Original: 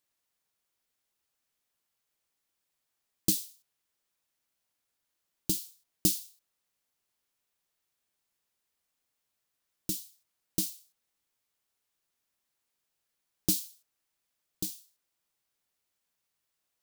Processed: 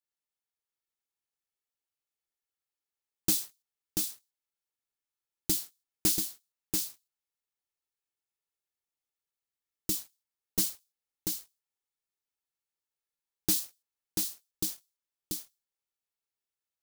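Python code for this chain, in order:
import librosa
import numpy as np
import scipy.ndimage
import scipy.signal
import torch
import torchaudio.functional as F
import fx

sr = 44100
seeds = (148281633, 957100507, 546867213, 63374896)

p1 = x + 0.38 * np.pad(x, (int(2.3 * sr / 1000.0), 0))[:len(x)]
p2 = fx.leveller(p1, sr, passes=3)
p3 = p2 + fx.echo_single(p2, sr, ms=686, db=-4.0, dry=0)
y = p3 * 10.0 ** (-8.0 / 20.0)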